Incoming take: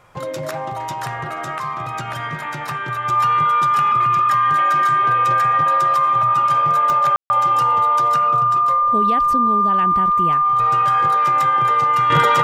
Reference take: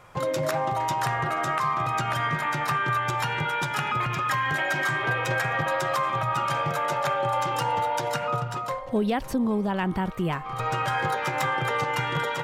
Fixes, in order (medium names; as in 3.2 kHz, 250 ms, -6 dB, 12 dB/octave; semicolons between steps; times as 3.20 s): de-click; band-stop 1.2 kHz, Q 30; room tone fill 7.16–7.30 s; gain correction -10 dB, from 12.10 s